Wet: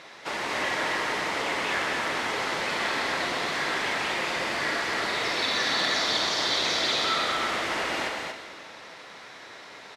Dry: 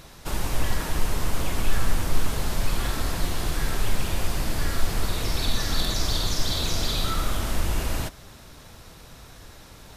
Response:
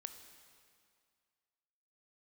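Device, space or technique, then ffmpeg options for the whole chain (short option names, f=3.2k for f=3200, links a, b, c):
station announcement: -filter_complex "[0:a]highpass=410,lowpass=4.5k,equalizer=f=2k:t=o:w=0.38:g=7.5,aecho=1:1:125.4|230.3:0.316|0.631[a];[1:a]atrim=start_sample=2205[b];[a][b]afir=irnorm=-1:irlink=0,volume=8dB"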